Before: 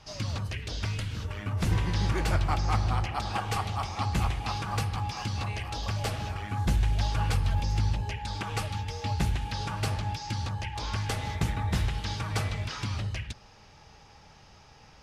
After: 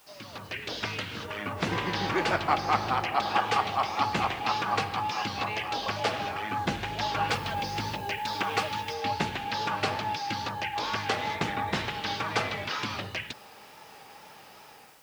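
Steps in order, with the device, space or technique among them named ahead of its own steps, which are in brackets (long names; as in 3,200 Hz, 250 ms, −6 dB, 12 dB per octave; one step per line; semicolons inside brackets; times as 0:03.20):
dictaphone (band-pass filter 290–4,200 Hz; automatic gain control gain up to 12 dB; tape wow and flutter; white noise bed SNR 29 dB)
0:07.29–0:08.94: high-shelf EQ 9,000 Hz +8 dB
level −5 dB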